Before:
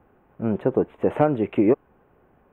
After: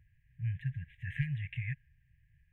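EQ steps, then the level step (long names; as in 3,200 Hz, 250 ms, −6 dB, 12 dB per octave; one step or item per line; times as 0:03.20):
high-shelf EQ 2,600 Hz −12 dB
dynamic equaliser 1,500 Hz, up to +6 dB, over −39 dBFS, Q 0.95
linear-phase brick-wall band-stop 150–1,600 Hz
0.0 dB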